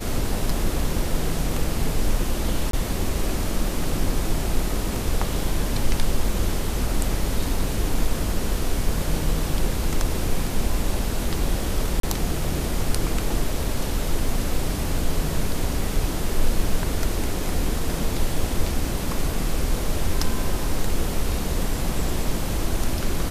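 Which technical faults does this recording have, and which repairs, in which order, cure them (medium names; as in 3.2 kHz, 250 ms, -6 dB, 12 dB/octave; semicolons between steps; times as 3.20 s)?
2.71–2.73 s: dropout 23 ms
12.00–12.03 s: dropout 33 ms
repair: interpolate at 2.71 s, 23 ms; interpolate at 12.00 s, 33 ms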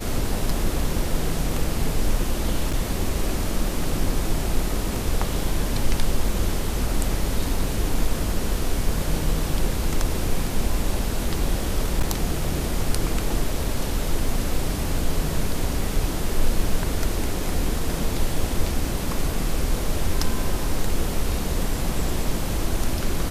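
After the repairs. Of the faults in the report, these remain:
nothing left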